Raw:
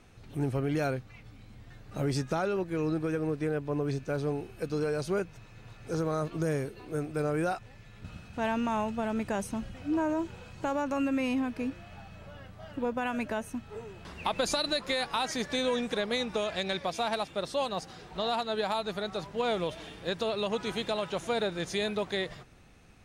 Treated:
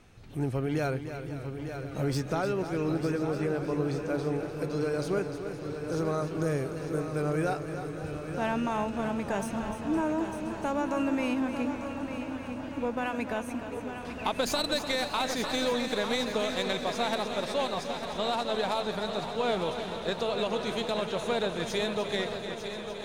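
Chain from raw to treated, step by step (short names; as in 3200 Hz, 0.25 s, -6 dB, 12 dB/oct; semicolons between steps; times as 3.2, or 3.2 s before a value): tracing distortion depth 0.03 ms; multi-head echo 0.3 s, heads first and third, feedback 59%, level -10 dB; warbling echo 0.516 s, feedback 79%, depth 103 cents, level -15 dB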